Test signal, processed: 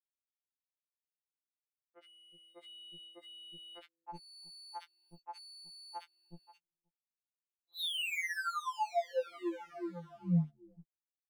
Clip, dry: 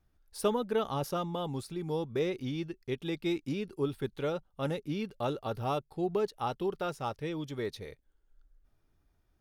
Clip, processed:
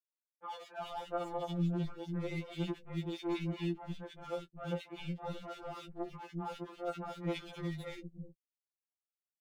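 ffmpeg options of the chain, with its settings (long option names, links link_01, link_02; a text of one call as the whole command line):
ffmpeg -i in.wav -filter_complex "[0:a]aresample=8000,aresample=44100,areverse,acompressor=threshold=-39dB:ratio=20,areverse,aeval=exprs='sgn(val(0))*max(abs(val(0))-0.00282,0)':channel_layout=same,asplit=2[link_01][link_02];[link_02]adelay=13,volume=-11.5dB[link_03];[link_01][link_03]amix=inputs=2:normalize=0,acrossover=split=310|1800[link_04][link_05][link_06];[link_06]adelay=60[link_07];[link_04]adelay=370[link_08];[link_08][link_05][link_07]amix=inputs=3:normalize=0,alimiter=level_in=16dB:limit=-24dB:level=0:latency=1:release=291,volume=-16dB,afftfilt=real='re*2.83*eq(mod(b,8),0)':imag='im*2.83*eq(mod(b,8),0)':win_size=2048:overlap=0.75,volume=12dB" out.wav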